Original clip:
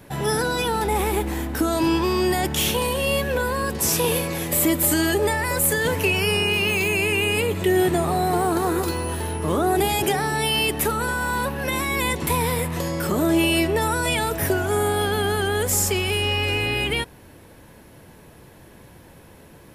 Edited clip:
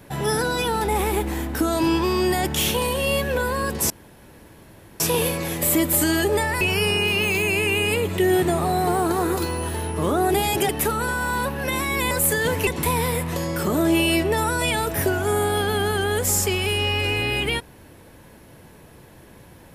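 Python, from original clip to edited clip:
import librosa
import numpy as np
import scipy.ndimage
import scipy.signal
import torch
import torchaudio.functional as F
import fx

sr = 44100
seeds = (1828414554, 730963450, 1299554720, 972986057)

y = fx.edit(x, sr, fx.insert_room_tone(at_s=3.9, length_s=1.1),
    fx.move(start_s=5.51, length_s=0.56, to_s=12.11),
    fx.cut(start_s=10.15, length_s=0.54), tone=tone)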